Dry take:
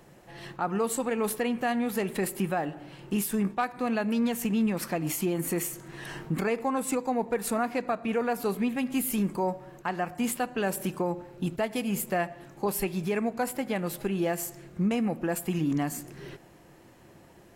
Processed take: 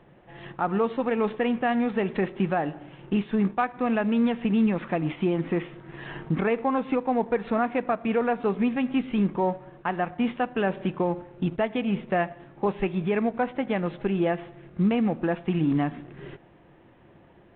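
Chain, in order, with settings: in parallel at -3.5 dB: crossover distortion -44 dBFS; on the sum: air absorption 180 m; µ-law 64 kbps 8000 Hz

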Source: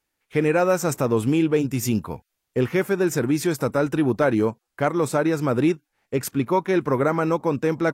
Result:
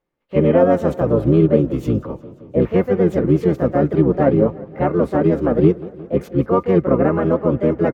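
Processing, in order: EQ curve 190 Hz 0 dB, 300 Hz +7 dB, 8900 Hz -16 dB; harmoniser -12 st -1 dB, +4 st -2 dB; bell 8600 Hz -5.5 dB 1.1 oct; small resonant body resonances 530/1200/2100 Hz, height 9 dB, ringing for 90 ms; warbling echo 0.177 s, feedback 69%, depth 148 cents, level -20 dB; gain -3.5 dB

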